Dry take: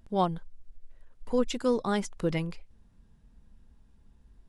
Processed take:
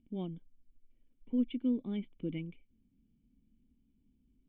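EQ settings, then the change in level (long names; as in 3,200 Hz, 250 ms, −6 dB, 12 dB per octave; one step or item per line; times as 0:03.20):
formant resonators in series i
low-shelf EQ 120 Hz −6 dB
+2.5 dB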